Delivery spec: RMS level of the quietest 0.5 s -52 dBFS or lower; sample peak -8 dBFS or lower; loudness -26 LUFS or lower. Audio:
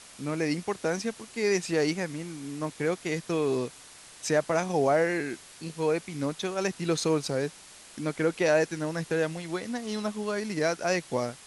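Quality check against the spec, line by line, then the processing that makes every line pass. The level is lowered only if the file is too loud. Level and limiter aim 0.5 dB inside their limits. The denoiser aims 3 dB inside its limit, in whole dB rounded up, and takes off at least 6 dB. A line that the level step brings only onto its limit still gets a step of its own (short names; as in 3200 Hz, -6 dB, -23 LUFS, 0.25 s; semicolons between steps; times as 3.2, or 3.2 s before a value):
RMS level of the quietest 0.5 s -50 dBFS: fail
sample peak -12.5 dBFS: OK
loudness -29.0 LUFS: OK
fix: denoiser 6 dB, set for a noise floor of -50 dBFS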